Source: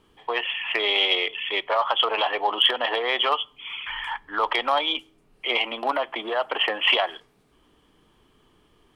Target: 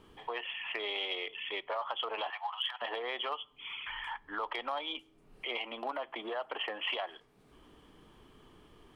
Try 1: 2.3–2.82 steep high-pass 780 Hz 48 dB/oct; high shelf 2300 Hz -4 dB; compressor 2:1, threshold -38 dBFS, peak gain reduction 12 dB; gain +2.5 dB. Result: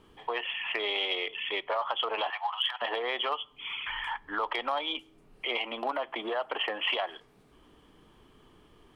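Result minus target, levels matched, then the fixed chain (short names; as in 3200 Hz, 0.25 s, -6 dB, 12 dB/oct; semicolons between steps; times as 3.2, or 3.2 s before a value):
compressor: peak gain reduction -5.5 dB
2.3–2.82 steep high-pass 780 Hz 48 dB/oct; high shelf 2300 Hz -4 dB; compressor 2:1, threshold -49 dBFS, peak gain reduction 17.5 dB; gain +2.5 dB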